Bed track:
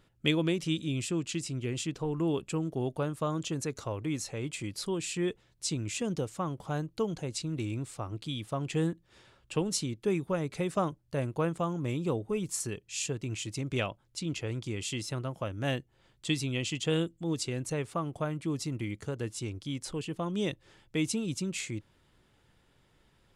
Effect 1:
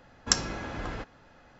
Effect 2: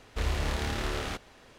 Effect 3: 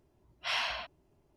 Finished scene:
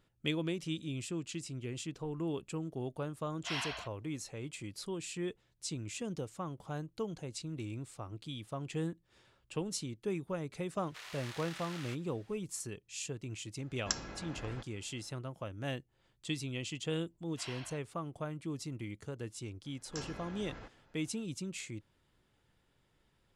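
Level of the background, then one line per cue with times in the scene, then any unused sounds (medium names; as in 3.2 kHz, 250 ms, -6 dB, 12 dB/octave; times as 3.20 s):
bed track -7 dB
3.01 s: add 3 -6 dB
10.78 s: add 2 -9 dB + high-pass 1.3 kHz
13.59 s: add 1 -10.5 dB
16.93 s: add 3 -15.5 dB
19.64 s: add 1 -12 dB + transient shaper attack -12 dB, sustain +1 dB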